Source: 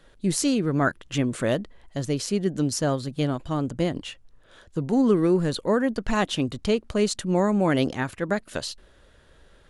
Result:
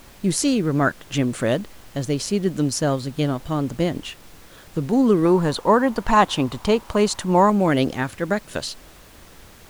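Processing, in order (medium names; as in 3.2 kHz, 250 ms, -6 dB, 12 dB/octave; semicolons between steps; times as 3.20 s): added noise pink -50 dBFS; 5.25–7.50 s: peaking EQ 950 Hz +12.5 dB 0.7 oct; trim +3 dB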